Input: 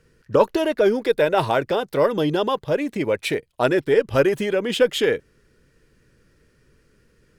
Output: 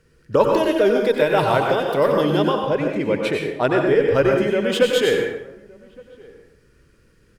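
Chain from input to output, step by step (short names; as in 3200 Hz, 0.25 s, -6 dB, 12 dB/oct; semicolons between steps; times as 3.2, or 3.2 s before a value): 2.49–4.61 LPF 3400 Hz 6 dB/oct; outdoor echo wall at 200 m, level -25 dB; plate-style reverb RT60 0.73 s, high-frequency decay 0.75×, pre-delay 80 ms, DRR 1 dB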